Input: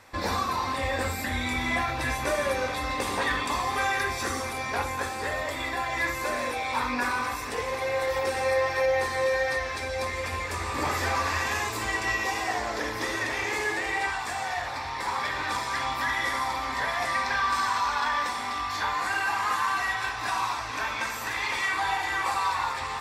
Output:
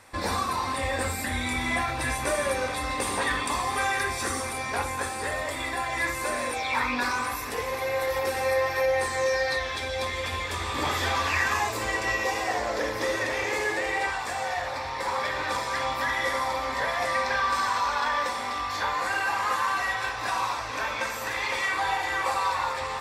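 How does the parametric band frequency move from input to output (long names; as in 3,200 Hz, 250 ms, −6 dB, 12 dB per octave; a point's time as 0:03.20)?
parametric band +11 dB 0.29 octaves
0:06.53 9,100 Hz
0:06.78 1,700 Hz
0:07.34 12,000 Hz
0:08.84 12,000 Hz
0:09.65 3,400 Hz
0:11.25 3,400 Hz
0:11.75 530 Hz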